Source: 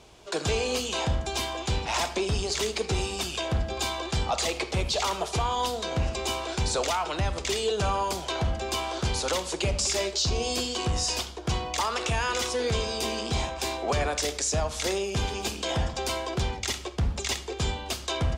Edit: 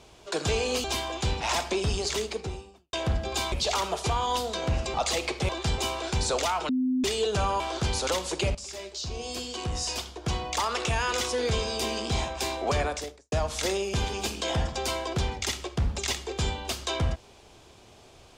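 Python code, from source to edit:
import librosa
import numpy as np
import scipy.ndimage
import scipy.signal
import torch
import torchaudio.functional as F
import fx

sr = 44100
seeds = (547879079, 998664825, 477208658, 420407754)

y = fx.studio_fade_out(x, sr, start_s=2.46, length_s=0.92)
y = fx.studio_fade_out(y, sr, start_s=13.99, length_s=0.54)
y = fx.edit(y, sr, fx.cut(start_s=0.84, length_s=0.45),
    fx.swap(start_s=3.97, length_s=0.29, other_s=4.81, other_length_s=1.42),
    fx.bleep(start_s=7.14, length_s=0.35, hz=256.0, db=-22.5),
    fx.cut(start_s=8.05, length_s=0.76),
    fx.fade_in_from(start_s=9.76, length_s=2.13, floor_db=-15.0), tone=tone)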